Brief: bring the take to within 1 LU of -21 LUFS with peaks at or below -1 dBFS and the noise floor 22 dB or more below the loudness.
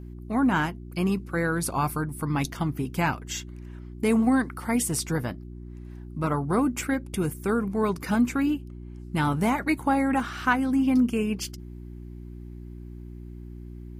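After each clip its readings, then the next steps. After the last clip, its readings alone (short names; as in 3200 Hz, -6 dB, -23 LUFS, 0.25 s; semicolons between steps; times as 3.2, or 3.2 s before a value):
hum 60 Hz; harmonics up to 360 Hz; hum level -38 dBFS; loudness -26.0 LUFS; peak -10.5 dBFS; loudness target -21.0 LUFS
-> de-hum 60 Hz, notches 6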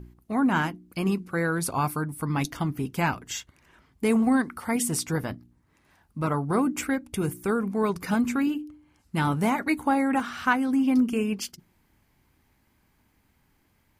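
hum none; loudness -26.5 LUFS; peak -10.0 dBFS; loudness target -21.0 LUFS
-> gain +5.5 dB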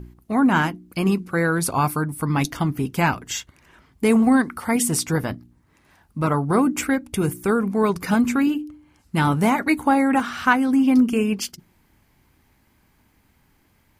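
loudness -21.0 LUFS; peak -4.5 dBFS; noise floor -62 dBFS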